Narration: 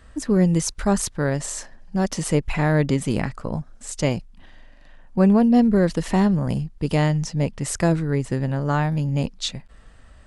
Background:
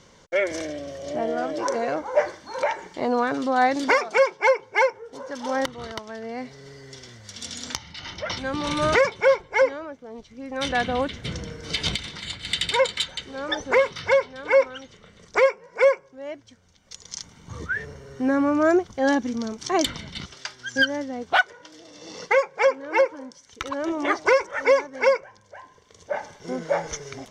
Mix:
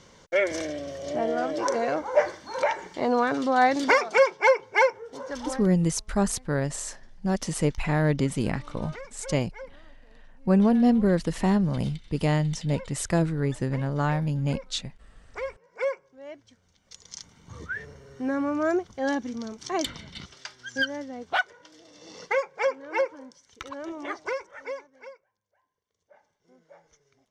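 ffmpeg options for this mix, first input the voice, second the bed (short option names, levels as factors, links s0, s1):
-filter_complex "[0:a]adelay=5300,volume=0.631[s0];[1:a]volume=6.68,afade=t=out:st=5.37:d=0.25:silence=0.0749894,afade=t=in:st=15.13:d=1.31:silence=0.141254,afade=t=out:st=23.21:d=1.95:silence=0.0668344[s1];[s0][s1]amix=inputs=2:normalize=0"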